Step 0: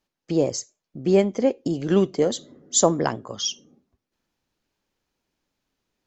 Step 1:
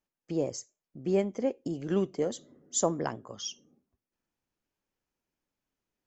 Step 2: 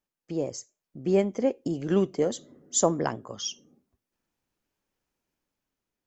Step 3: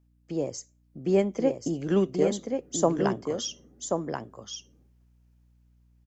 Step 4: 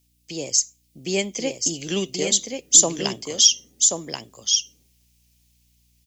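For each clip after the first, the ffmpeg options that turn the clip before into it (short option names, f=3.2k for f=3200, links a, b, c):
-af "equalizer=f=4k:w=2.3:g=-6,volume=-9dB"
-af "dynaudnorm=f=240:g=7:m=4.5dB"
-filter_complex "[0:a]acrossover=split=190|1500[a][b][c];[c]alimiter=limit=-22.5dB:level=0:latency=1:release=175[d];[a][b][d]amix=inputs=3:normalize=0,aeval=exprs='val(0)+0.000708*(sin(2*PI*60*n/s)+sin(2*PI*2*60*n/s)/2+sin(2*PI*3*60*n/s)/3+sin(2*PI*4*60*n/s)/4+sin(2*PI*5*60*n/s)/5)':c=same,aecho=1:1:1082:0.562"
-af "aexciter=amount=10.6:drive=5:freq=2.2k,volume=-2.5dB"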